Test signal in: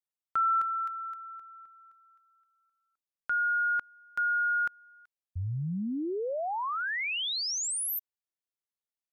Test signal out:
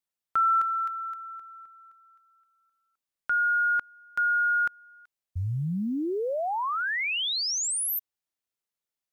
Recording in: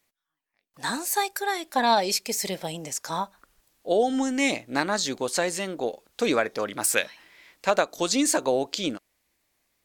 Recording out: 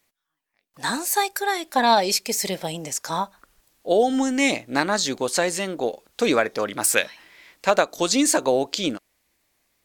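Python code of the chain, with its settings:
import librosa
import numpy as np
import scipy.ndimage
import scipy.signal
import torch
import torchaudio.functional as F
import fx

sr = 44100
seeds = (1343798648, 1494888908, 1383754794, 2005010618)

y = fx.quant_float(x, sr, bits=6)
y = y * librosa.db_to_amplitude(3.5)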